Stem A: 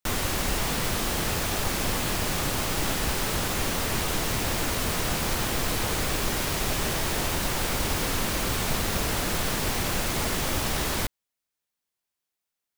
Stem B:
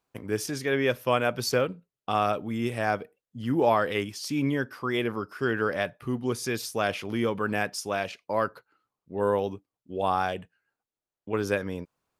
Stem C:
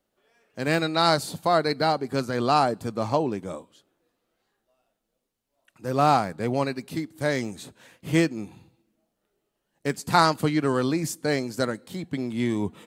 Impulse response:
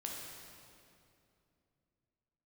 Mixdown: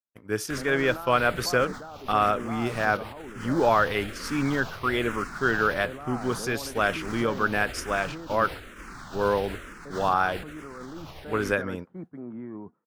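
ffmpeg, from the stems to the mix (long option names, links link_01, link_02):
-filter_complex "[0:a]highshelf=frequency=7400:gain=-6,alimiter=limit=-23dB:level=0:latency=1:release=135,asplit=2[link_01][link_02];[link_02]afreqshift=-1.1[link_03];[link_01][link_03]amix=inputs=2:normalize=1,adelay=450,volume=-1dB[link_04];[1:a]volume=0dB[link_05];[2:a]lowpass=frequency=1400:width=0.5412,lowpass=frequency=1400:width=1.3066,equalizer=frequency=70:width_type=o:width=1.3:gain=-11,acompressor=threshold=-26dB:ratio=4,volume=-0.5dB[link_06];[link_04][link_06]amix=inputs=2:normalize=0,highshelf=frequency=7500:gain=-9,alimiter=level_in=4.5dB:limit=-24dB:level=0:latency=1:release=37,volume=-4.5dB,volume=0dB[link_07];[link_05][link_07]amix=inputs=2:normalize=0,agate=range=-33dB:threshold=-31dB:ratio=3:detection=peak,equalizer=frequency=1400:width_type=o:width=0.68:gain=7.5"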